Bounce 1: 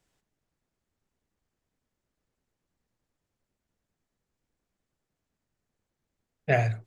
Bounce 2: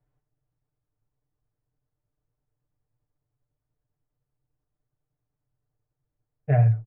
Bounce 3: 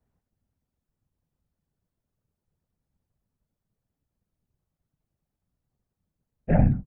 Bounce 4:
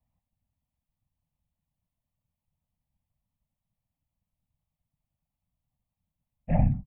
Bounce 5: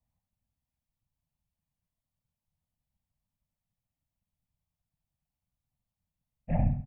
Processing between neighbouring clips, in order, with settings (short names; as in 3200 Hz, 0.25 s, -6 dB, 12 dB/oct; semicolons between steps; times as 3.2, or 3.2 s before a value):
LPF 1200 Hz 12 dB/oct; resonant low shelf 150 Hz +6 dB, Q 3; comb 6.7 ms, depth 77%; gain -4.5 dB
whisperiser
fixed phaser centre 1500 Hz, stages 6; gain -2 dB
feedback echo 70 ms, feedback 36%, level -10.5 dB; gain -4 dB